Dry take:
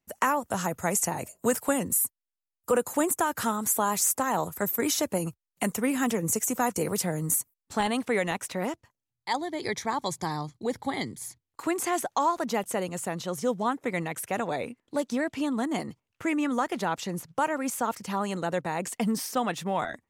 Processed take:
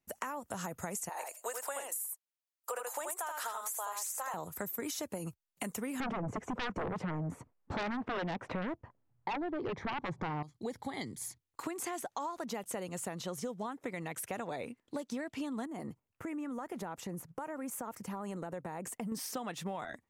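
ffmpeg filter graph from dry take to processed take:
-filter_complex "[0:a]asettb=1/sr,asplit=3[s0][s1][s2];[s0]atrim=end=1.094[s3];[s1]atrim=start=1.09:end=4.34,asetpts=PTS-STARTPTS,afade=t=in:d=0.004:c=qsin,afade=t=out:st=3.246:d=0.004:c=qsin,highpass=f=560:w=0.5412,highpass=f=560:w=1.3066,aecho=1:1:79:0.562,atrim=end_sample=143325[s4];[s2]atrim=start=4.336[s5];[s3][s4]acrossfade=d=0.004:c1=hsin:c2=qsin[s6];[s6][s5]acrossfade=d=0.004:c1=qsin:c2=hsin,asettb=1/sr,asplit=3[s7][s8][s9];[s7]atrim=end=6.004[s10];[s8]atrim=start=6:end=10.43,asetpts=PTS-STARTPTS,afade=t=in:d=0.004:c=qsin,afade=t=out:st=4.426:d=0.004:c=qsin,lowpass=1100,aeval=exprs='0.178*sin(PI/2*4.47*val(0)/0.178)':c=same[s11];[s9]atrim=start=10.426[s12];[s10][s11]acrossfade=d=0.004:c1=hsin:c2=qsin[s13];[s13][s12]acrossfade=d=0.004:c1=qsin:c2=hsin,asettb=1/sr,asplit=3[s14][s15][s16];[s14]atrim=end=15.664[s17];[s15]atrim=start=15.66:end=19.12,asetpts=PTS-STARTPTS,afade=t=in:d=0.004:c=qsin,afade=t=out:st=3.456:d=0.004:c=qsin,equalizer=f=4000:w=0.74:g=-12,acompressor=threshold=0.0224:ratio=4:attack=3.2:release=140:knee=1:detection=peak[s18];[s16]atrim=start=19.116[s19];[s17][s18]acrossfade=d=0.004:c1=hsin:c2=qsin[s20];[s20][s19]acrossfade=d=0.004:c1=qsin:c2=hsin,alimiter=limit=0.112:level=0:latency=1:release=168,acompressor=threshold=0.0224:ratio=6,volume=0.75"

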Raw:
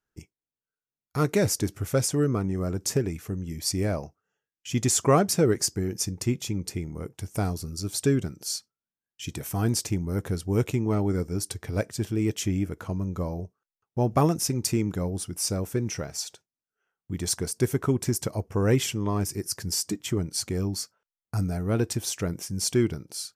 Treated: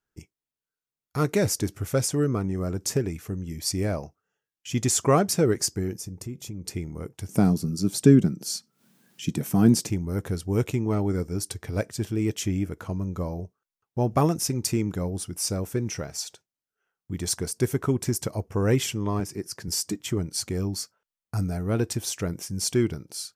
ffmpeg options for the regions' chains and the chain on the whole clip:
-filter_complex "[0:a]asettb=1/sr,asplit=3[s0][s1][s2];[s0]atrim=end=5.964[s3];[s1]atrim=start=5.96:end=6.65,asetpts=PTS-STARTPTS,afade=t=in:d=0.004:c=qsin,afade=t=out:st=0.686:d=0.004:c=qsin,equalizer=f=2700:w=0.33:g=-8,acompressor=threshold=0.0224:ratio=3:attack=3.2:release=140:knee=1:detection=peak[s4];[s2]atrim=start=6.646[s5];[s3][s4]acrossfade=d=0.004:c1=hsin:c2=qsin[s6];[s6][s5]acrossfade=d=0.004:c1=qsin:c2=hsin,asettb=1/sr,asplit=3[s7][s8][s9];[s7]atrim=end=7.294[s10];[s8]atrim=start=7.29:end=9.9,asetpts=PTS-STARTPTS,afade=t=in:d=0.004:c=qsin,afade=t=out:st=2.606:d=0.004:c=qsin,highpass=140,equalizer=f=190:t=o:w=1.6:g=14,acompressor=mode=upward:threshold=0.0141:ratio=2.5:attack=3.2:release=140:knee=2.83:detection=peak[s11];[s9]atrim=start=9.896[s12];[s10][s11]acrossfade=d=0.004:c1=hsin:c2=qsin[s13];[s13][s12]acrossfade=d=0.004:c1=qsin:c2=hsin,asettb=1/sr,asplit=3[s14][s15][s16];[s14]atrim=end=19.204[s17];[s15]atrim=start=19.2:end=19.68,asetpts=PTS-STARTPTS,afade=t=in:d=0.004:c=qsin,afade=t=out:st=0.476:d=0.004:c=qsin,highpass=130,aemphasis=mode=reproduction:type=cd[s18];[s16]atrim=start=19.676[s19];[s17][s18]acrossfade=d=0.004:c1=hsin:c2=qsin[s20];[s20][s19]acrossfade=d=0.004:c1=qsin:c2=hsin"

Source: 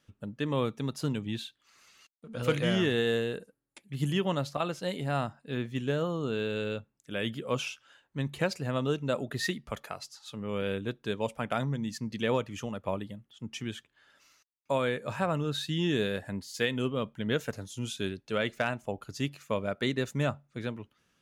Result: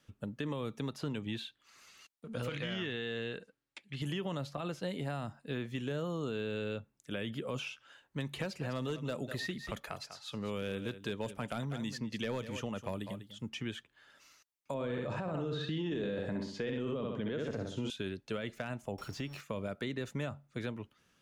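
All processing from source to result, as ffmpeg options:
-filter_complex "[0:a]asettb=1/sr,asplit=3[s0][s1][s2];[s0]atrim=end=2.494[s3];[s1]atrim=start=2.49:end=4.02,asetpts=PTS-STARTPTS,afade=t=in:d=0.004:c=qsin,afade=t=out:st=1.526:d=0.004:c=qsin,lowpass=4300,tiltshelf=f=1200:g=-6.5[s4];[s2]atrim=start=4.016[s5];[s3][s4]acrossfade=d=0.004:c1=hsin:c2=qsin[s6];[s6][s5]acrossfade=d=0.004:c1=qsin:c2=hsin,asettb=1/sr,asplit=3[s7][s8][s9];[s7]atrim=end=8.204[s10];[s8]atrim=start=8.2:end=13.49,asetpts=PTS-STARTPTS,afade=t=in:d=0.004:c=qsin,afade=t=out:st=5.286:d=0.004:c=qsin,highshelf=f=3500:g=8,asoftclip=type=hard:threshold=0.0891,aecho=1:1:197:0.178,atrim=end_sample=233289[s11];[s9]atrim=start=13.486[s12];[s10][s11]acrossfade=d=0.004:c1=hsin:c2=qsin[s13];[s13][s12]acrossfade=d=0.004:c1=qsin:c2=hsin,asettb=1/sr,asplit=3[s14][s15][s16];[s14]atrim=end=14.744[s17];[s15]atrim=start=14.74:end=17.9,asetpts=PTS-STARTPTS,afade=t=in:d=0.004:c=qsin,afade=t=out:st=3.156:d=0.004:c=qsin,lowpass=4800,equalizer=f=390:w=0.33:g=9,aecho=1:1:64|128|192|256:0.473|0.175|0.0648|0.024,atrim=end_sample=139356[s18];[s16]atrim=start=17.896[s19];[s17][s18]acrossfade=d=0.004:c1=hsin:c2=qsin[s20];[s20][s19]acrossfade=d=0.004:c1=qsin:c2=hsin,asettb=1/sr,asplit=3[s21][s22][s23];[s21]atrim=end=18.984[s24];[s22]atrim=start=18.98:end=19.41,asetpts=PTS-STARTPTS,afade=t=in:d=0.004:c=qsin,afade=t=out:st=0.426:d=0.004:c=qsin,aeval=exprs='val(0)+0.5*0.00562*sgn(val(0))':c=same,aeval=exprs='val(0)+0.00178*sin(2*PI*5500*n/s)':c=same,acompressor=threshold=0.02:ratio=3:attack=3.2:release=140:knee=1:detection=peak[s25];[s23]atrim=start=19.406[s26];[s24][s25]acrossfade=d=0.004:c1=hsin:c2=qsin[s27];[s27][s26]acrossfade=d=0.004:c1=qsin:c2=hsin,alimiter=limit=0.0708:level=0:latency=1:release=29,acrossover=split=340|3900[s28][s29][s30];[s28]acompressor=threshold=0.0112:ratio=4[s31];[s29]acompressor=threshold=0.01:ratio=4[s32];[s30]acompressor=threshold=0.00126:ratio=4[s33];[s31][s32][s33]amix=inputs=3:normalize=0,volume=1.12"

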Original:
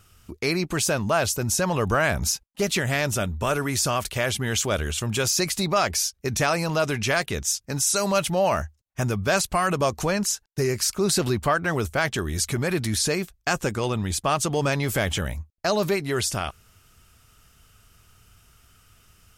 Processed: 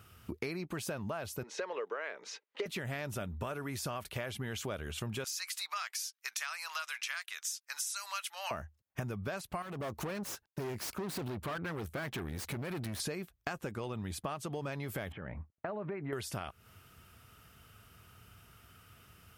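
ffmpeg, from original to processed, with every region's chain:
-filter_complex "[0:a]asettb=1/sr,asplit=3[s0][s1][s2];[s0]atrim=end=1.434[s3];[s1]atrim=start=1.43:end=2.66,asetpts=PTS-STARTPTS,afade=t=in:d=0.004:c=qsin,afade=t=out:st=1.226:d=0.004:c=qsin,acompressor=mode=upward:threshold=0.00631:ratio=2.5:attack=3.2:release=140:knee=2.83:detection=peak,highpass=f=390:w=0.5412,highpass=f=390:w=1.3066,equalizer=f=450:t=q:w=4:g=9,equalizer=f=730:t=q:w=4:g=-7,equalizer=f=2000:t=q:w=4:g=6,equalizer=f=5100:t=q:w=4:g=-5,lowpass=f=5500:w=0.5412,lowpass=f=5500:w=1.3066[s4];[s2]atrim=start=2.656[s5];[s3][s4]acrossfade=d=0.004:c1=hsin:c2=qsin[s6];[s6][s5]acrossfade=d=0.004:c1=qsin:c2=hsin,asettb=1/sr,asplit=3[s7][s8][s9];[s7]atrim=end=5.244[s10];[s8]atrim=start=5.24:end=8.51,asetpts=PTS-STARTPTS,afade=t=in:d=0.004:c=qsin,afade=t=out:st=3.266:d=0.004:c=qsin,highpass=f=1200:w=0.5412,highpass=f=1200:w=1.3066,equalizer=f=6800:w=0.73:g=6.5[s11];[s9]atrim=start=8.506[s12];[s10][s11]acrossfade=d=0.004:c1=hsin:c2=qsin[s13];[s13][s12]acrossfade=d=0.004:c1=qsin:c2=hsin,asettb=1/sr,asplit=3[s14][s15][s16];[s14]atrim=end=9.624[s17];[s15]atrim=start=9.62:end=13,asetpts=PTS-STARTPTS,afade=t=in:d=0.004:c=qsin,afade=t=out:st=3.376:d=0.004:c=qsin,bandreject=f=760:w=12,aeval=exprs='(tanh(28.2*val(0)+0.7)-tanh(0.7))/28.2':c=same[s18];[s16]atrim=start=12.996[s19];[s17][s18]acrossfade=d=0.004:c1=hsin:c2=qsin[s20];[s20][s19]acrossfade=d=0.004:c1=qsin:c2=hsin,asettb=1/sr,asplit=3[s21][s22][s23];[s21]atrim=end=15.124[s24];[s22]atrim=start=15.12:end=16.13,asetpts=PTS-STARTPTS,afade=t=in:d=0.004:c=qsin,afade=t=out:st=1.006:d=0.004:c=qsin,lowpass=f=2100:w=0.5412,lowpass=f=2100:w=1.3066,equalizer=f=63:w=1.2:g=-7.5,acompressor=threshold=0.0158:ratio=2.5:attack=3.2:release=140:knee=1:detection=peak[s25];[s23]atrim=start=16.126[s26];[s24][s25]acrossfade=d=0.004:c1=hsin:c2=qsin[s27];[s27][s26]acrossfade=d=0.004:c1=qsin:c2=hsin,highpass=80,equalizer=f=6800:t=o:w=1.4:g=-10,acompressor=threshold=0.0158:ratio=16,volume=1.12"

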